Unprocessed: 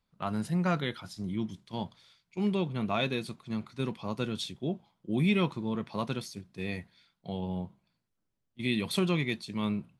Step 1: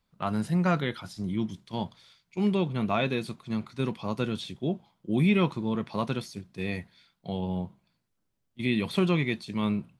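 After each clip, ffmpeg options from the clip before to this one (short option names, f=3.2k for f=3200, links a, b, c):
-filter_complex "[0:a]acrossover=split=3000[a][b];[b]acompressor=threshold=-45dB:ratio=4:attack=1:release=60[c];[a][c]amix=inputs=2:normalize=0,volume=3.5dB"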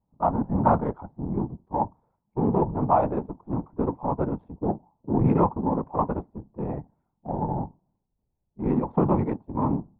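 -af "afftfilt=real='hypot(re,im)*cos(2*PI*random(0))':imag='hypot(re,im)*sin(2*PI*random(1))':win_size=512:overlap=0.75,adynamicsmooth=sensitivity=4:basefreq=580,lowpass=f=890:t=q:w=4.9,volume=7.5dB"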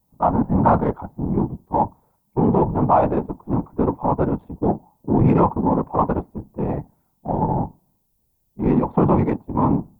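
-filter_complex "[0:a]aemphasis=mode=production:type=75fm,asplit=2[a][b];[b]alimiter=limit=-17dB:level=0:latency=1:release=16,volume=3dB[c];[a][c]amix=inputs=2:normalize=0"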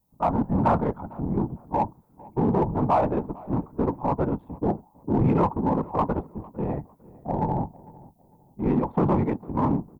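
-filter_complex "[0:a]asplit=2[a][b];[b]asoftclip=type=hard:threshold=-15dB,volume=-7.5dB[c];[a][c]amix=inputs=2:normalize=0,asplit=2[d][e];[e]adelay=452,lowpass=f=1.4k:p=1,volume=-21dB,asplit=2[f][g];[g]adelay=452,lowpass=f=1.4k:p=1,volume=0.33[h];[d][f][h]amix=inputs=3:normalize=0,volume=-7.5dB"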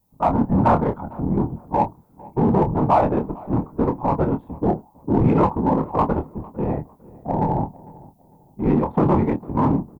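-filter_complex "[0:a]asplit=2[a][b];[b]adelay=26,volume=-8dB[c];[a][c]amix=inputs=2:normalize=0,volume=4dB"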